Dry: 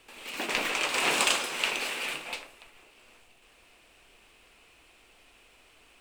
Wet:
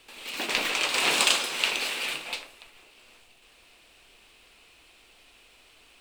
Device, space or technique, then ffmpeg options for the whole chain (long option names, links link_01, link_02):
presence and air boost: -af "equalizer=frequency=4000:width_type=o:width=0.9:gain=6,highshelf=frequency=9100:gain=4"